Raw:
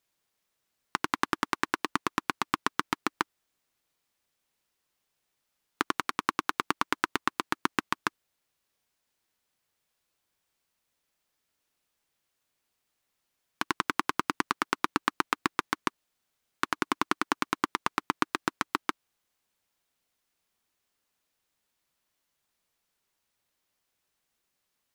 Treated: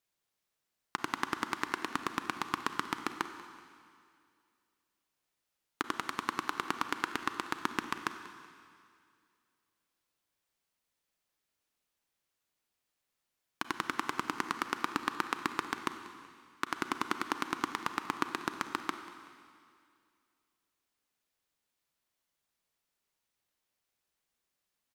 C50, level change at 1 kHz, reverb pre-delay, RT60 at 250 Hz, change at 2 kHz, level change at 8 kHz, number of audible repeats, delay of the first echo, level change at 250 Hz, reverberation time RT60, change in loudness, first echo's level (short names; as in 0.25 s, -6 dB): 8.5 dB, -5.0 dB, 31 ms, 2.3 s, -5.0 dB, -5.0 dB, 2, 0.189 s, -5.0 dB, 2.3 s, -5.0 dB, -19.0 dB